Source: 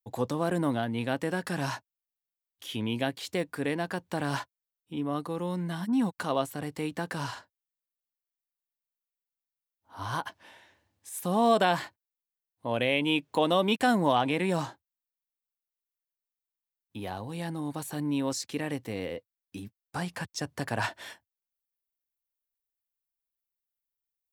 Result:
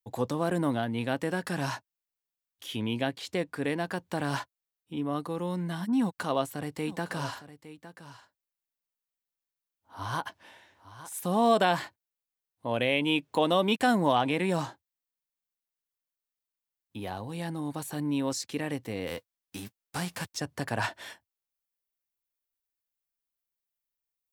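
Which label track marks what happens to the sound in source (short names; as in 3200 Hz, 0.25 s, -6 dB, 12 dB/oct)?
2.940000	3.620000	high shelf 9900 Hz -8.5 dB
6.010000	11.130000	echo 0.86 s -14.5 dB
19.060000	20.360000	spectral whitening exponent 0.6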